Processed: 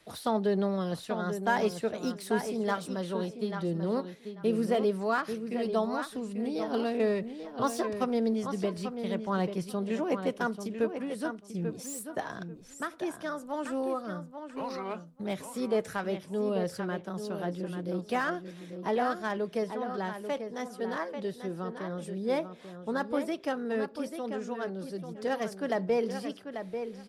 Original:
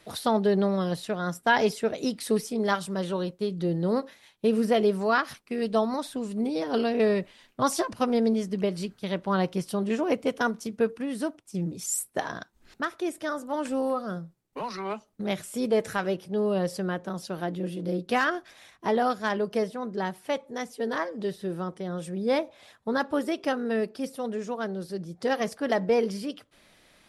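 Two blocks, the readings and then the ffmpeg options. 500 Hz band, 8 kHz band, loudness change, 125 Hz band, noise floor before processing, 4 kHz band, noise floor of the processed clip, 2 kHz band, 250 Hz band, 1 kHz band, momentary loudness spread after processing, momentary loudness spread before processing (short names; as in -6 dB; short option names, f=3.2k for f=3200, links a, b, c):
-4.0 dB, -8.0 dB, -4.5 dB, -4.0 dB, -61 dBFS, -6.5 dB, -50 dBFS, -5.5 dB, -4.0 dB, -4.0 dB, 9 LU, 10 LU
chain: -filter_complex "[0:a]asplit=2[a][b];[b]adelay=840,lowpass=f=3.2k:p=1,volume=-8dB,asplit=2[c][d];[d]adelay=840,lowpass=f=3.2k:p=1,volume=0.18,asplit=2[e][f];[f]adelay=840,lowpass=f=3.2k:p=1,volume=0.18[g];[a][c][e][g]amix=inputs=4:normalize=0,acrossover=split=310|740|1600[h][i][j][k];[k]asoftclip=type=tanh:threshold=-33dB[l];[h][i][j][l]amix=inputs=4:normalize=0,volume=-4.5dB"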